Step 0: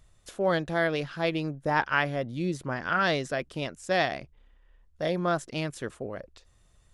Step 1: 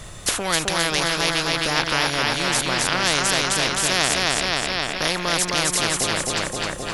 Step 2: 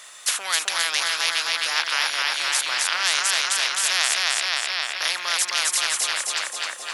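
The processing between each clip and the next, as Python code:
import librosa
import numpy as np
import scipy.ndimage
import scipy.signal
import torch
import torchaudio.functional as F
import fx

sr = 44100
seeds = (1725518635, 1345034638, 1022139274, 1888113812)

y1 = fx.echo_feedback(x, sr, ms=262, feedback_pct=51, wet_db=-4)
y1 = fx.spectral_comp(y1, sr, ratio=4.0)
y1 = y1 * 10.0 ** (6.0 / 20.0)
y2 = scipy.signal.sosfilt(scipy.signal.butter(2, 1200.0, 'highpass', fs=sr, output='sos'), y1)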